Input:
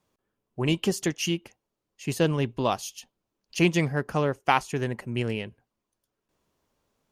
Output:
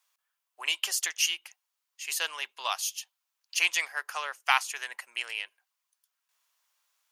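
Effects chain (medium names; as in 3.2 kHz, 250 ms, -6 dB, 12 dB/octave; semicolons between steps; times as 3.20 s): Bessel high-pass 1.5 kHz, order 4; treble shelf 9 kHz +5.5 dB; trim +4 dB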